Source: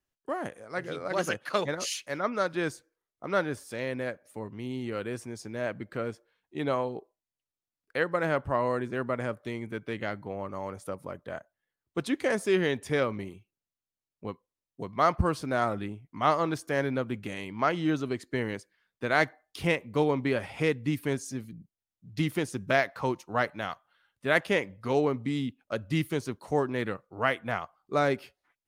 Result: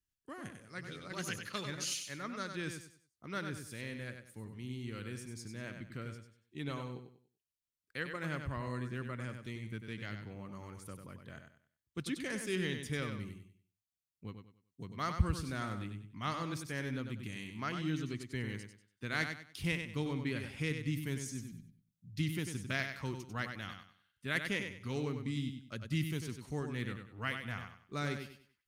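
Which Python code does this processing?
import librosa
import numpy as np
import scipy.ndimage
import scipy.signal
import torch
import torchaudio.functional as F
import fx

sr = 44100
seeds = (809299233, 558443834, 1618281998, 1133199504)

p1 = fx.tone_stack(x, sr, knobs='6-0-2')
p2 = p1 + fx.echo_feedback(p1, sr, ms=96, feedback_pct=30, wet_db=-7.0, dry=0)
y = p2 * 10.0 ** (11.0 / 20.0)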